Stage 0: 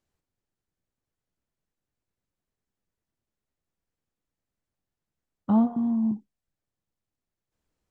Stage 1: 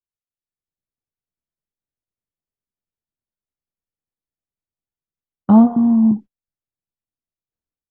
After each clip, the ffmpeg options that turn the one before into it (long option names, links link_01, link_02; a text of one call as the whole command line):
ffmpeg -i in.wav -af "aemphasis=mode=reproduction:type=75kf,agate=range=-23dB:threshold=-41dB:ratio=16:detection=peak,dynaudnorm=framelen=210:gausssize=5:maxgain=13.5dB" out.wav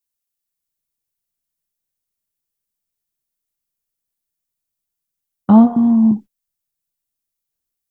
ffmpeg -i in.wav -af "crystalizer=i=3:c=0,volume=1dB" out.wav